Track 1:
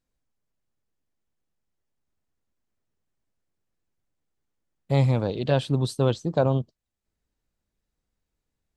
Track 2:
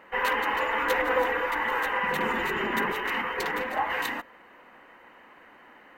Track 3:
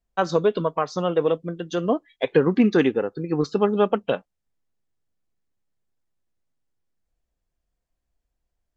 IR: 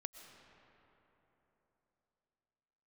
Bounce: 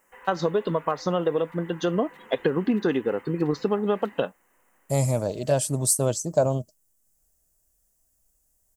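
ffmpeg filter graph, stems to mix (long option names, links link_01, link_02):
-filter_complex "[0:a]equalizer=frequency=620:width_type=o:width=0.2:gain=14.5,aexciter=amount=11:drive=10:freq=5900,volume=-3.5dB[link_01];[1:a]acompressor=threshold=-32dB:ratio=3,volume=-15.5dB[link_02];[2:a]acompressor=threshold=-23dB:ratio=6,bandreject=frequency=2300:width=7.6,adelay=100,volume=3dB[link_03];[link_01][link_02][link_03]amix=inputs=3:normalize=0,highshelf=frequency=5700:gain=-4.5"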